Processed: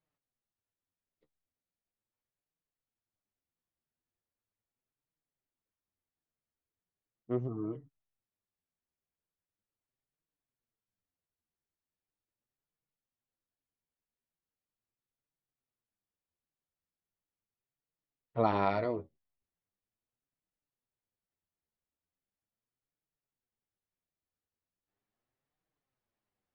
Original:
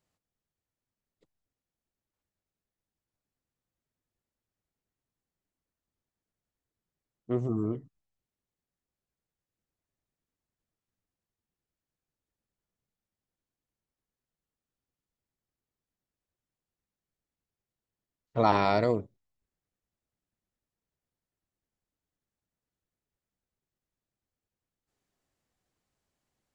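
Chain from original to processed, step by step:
high-frequency loss of the air 250 metres
flanger 0.39 Hz, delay 6.1 ms, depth 7.3 ms, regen +29%
low-shelf EQ 360 Hz −4.5 dB

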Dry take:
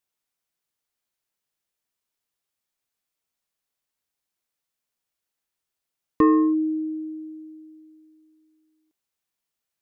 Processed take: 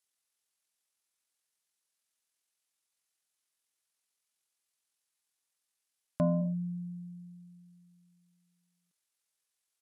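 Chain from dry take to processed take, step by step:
spectral tilt +2.5 dB per octave
pitch shifter −10 semitones
level −7.5 dB

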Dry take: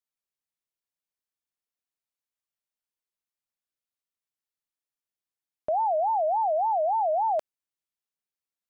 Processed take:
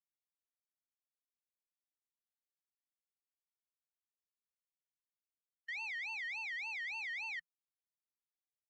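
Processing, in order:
spectral peaks only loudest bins 8
power curve on the samples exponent 1.4
Chebyshev band-stop filter 170–1,200 Hz, order 5
high-frequency loss of the air 120 metres
level +6 dB

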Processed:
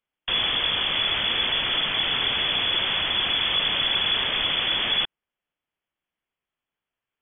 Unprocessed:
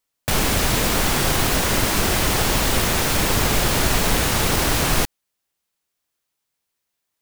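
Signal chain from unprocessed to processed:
hard clipping −17 dBFS, distortion −12 dB
voice inversion scrambler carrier 3,400 Hz
level −3 dB

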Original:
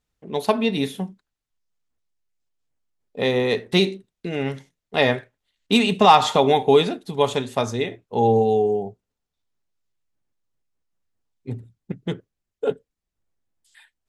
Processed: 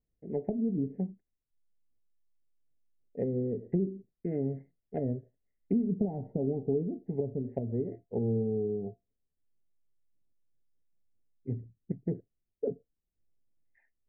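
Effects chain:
Butterworth low-pass 2,000 Hz 72 dB per octave
treble cut that deepens with the level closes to 300 Hz, closed at −19 dBFS
downward compressor 2 to 1, threshold −23 dBFS, peak gain reduction 4.5 dB
Butterworth band-reject 1,200 Hz, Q 0.57
tuned comb filter 690 Hz, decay 0.2 s, harmonics all, mix 60%
level +4 dB

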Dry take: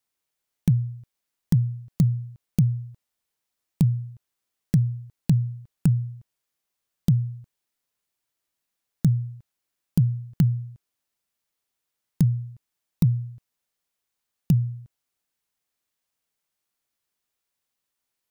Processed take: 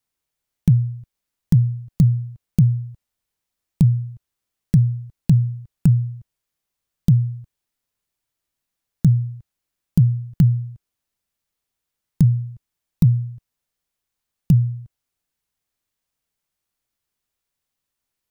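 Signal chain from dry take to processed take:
low-shelf EQ 140 Hz +10.5 dB

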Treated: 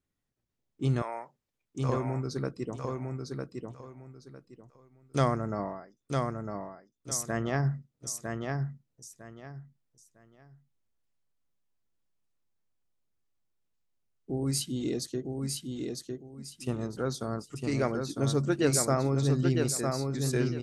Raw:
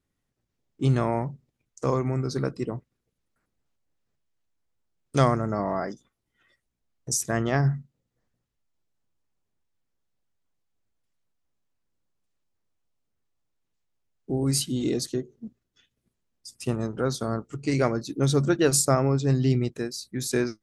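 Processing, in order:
0:01.02–0:01.89: high-pass filter 750 Hz 12 dB per octave
0:05.63–0:07.12: duck −20.5 dB, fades 0.31 s quadratic
repeating echo 954 ms, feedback 24%, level −4 dB
level −5.5 dB

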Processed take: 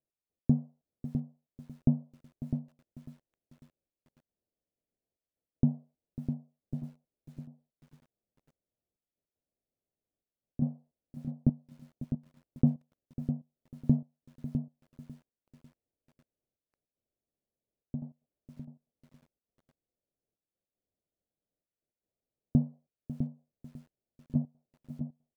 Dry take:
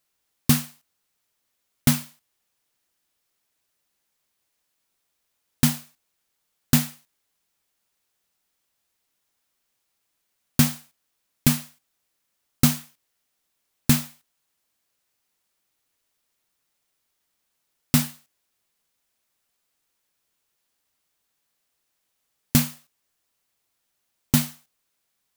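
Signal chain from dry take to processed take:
Butterworth low-pass 650 Hz 36 dB per octave
gate pattern "x..x.xxxxxxxx" 154 BPM −12 dB
single-tap delay 654 ms −8 dB
feedback echo at a low word length 547 ms, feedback 35%, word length 8 bits, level −15 dB
level −5 dB

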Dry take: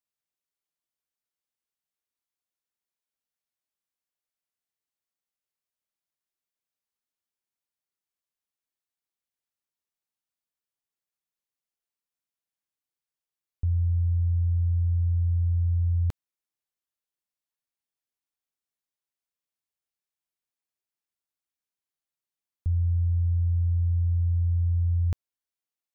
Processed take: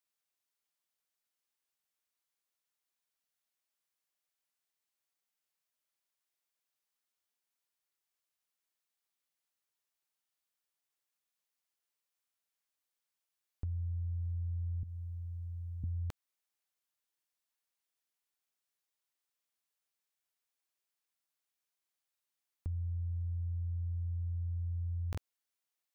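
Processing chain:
0:14.83–0:15.84: high-pass filter 160 Hz 12 dB per octave
low-shelf EQ 350 Hz −10.5 dB
downward compressor, threshold −38 dBFS, peak gain reduction 6 dB
regular buffer underruns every 0.99 s, samples 2,048, repeat, from 0:00.35
level +3 dB

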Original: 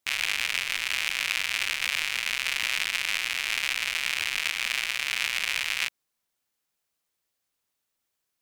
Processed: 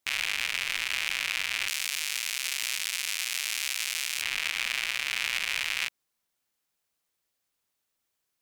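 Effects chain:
0:01.68–0:04.22: bass and treble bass −9 dB, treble +13 dB
brickwall limiter −11.5 dBFS, peak gain reduction 10.5 dB

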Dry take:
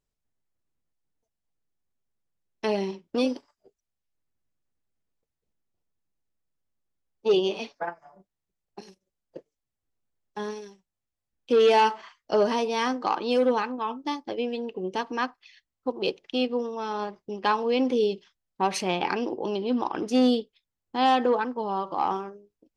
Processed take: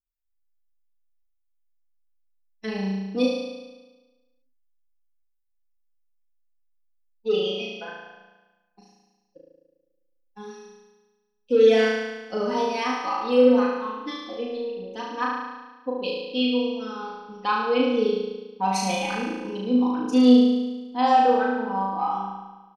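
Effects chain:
spectral dynamics exaggerated over time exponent 1.5
comb filter 4 ms, depth 97%
flutter between parallel walls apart 6.2 metres, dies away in 1.2 s
level −2.5 dB

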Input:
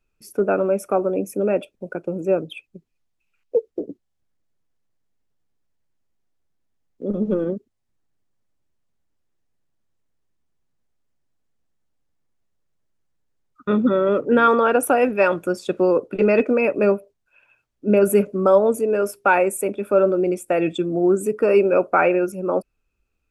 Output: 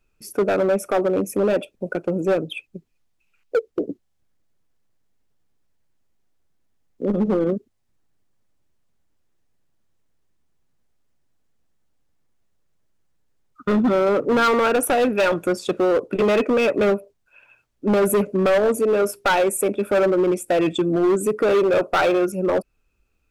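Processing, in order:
in parallel at −2 dB: downward compressor, threshold −24 dBFS, peak gain reduction 13.5 dB
on the sum: hard clipping −14.5 dBFS, distortion −10 dB

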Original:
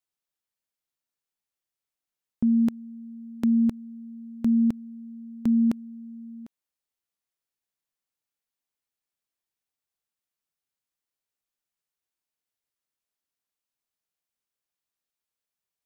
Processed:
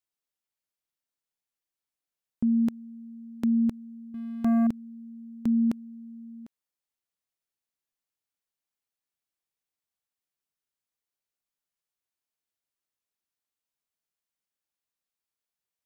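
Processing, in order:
0:04.14–0:04.67: leveller curve on the samples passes 2
level −2.5 dB

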